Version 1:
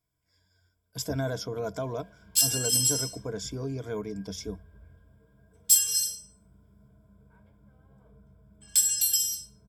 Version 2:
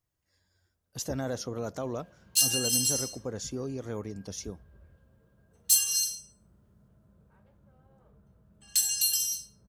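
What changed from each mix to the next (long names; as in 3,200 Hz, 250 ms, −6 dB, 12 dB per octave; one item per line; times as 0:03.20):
master: remove EQ curve with evenly spaced ripples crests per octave 1.7, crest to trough 13 dB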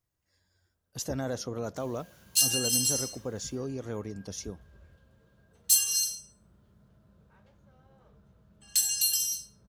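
first sound: remove head-to-tape spacing loss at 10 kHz 29 dB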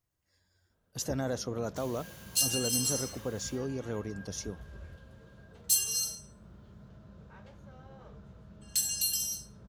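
first sound +9.0 dB
second sound −4.0 dB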